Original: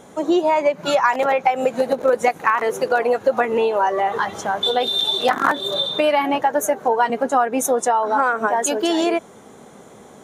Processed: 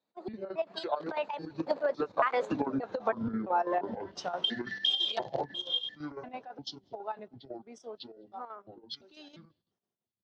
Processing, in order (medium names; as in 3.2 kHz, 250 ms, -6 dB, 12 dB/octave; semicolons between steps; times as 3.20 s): pitch shift switched off and on -10.5 st, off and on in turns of 312 ms; Doppler pass-by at 2.83 s, 39 m/s, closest 13 m; low-pass 5.8 kHz 24 dB/octave; compression 10:1, threshold -29 dBFS, peak gain reduction 16.5 dB; high-pass 110 Hz; peaking EQ 4.1 kHz +9.5 dB 0.7 oct; echo from a far wall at 36 m, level -30 dB; square tremolo 6 Hz, depth 60%, duty 70%; dynamic bell 840 Hz, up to +4 dB, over -45 dBFS, Q 0.87; three bands expanded up and down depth 70%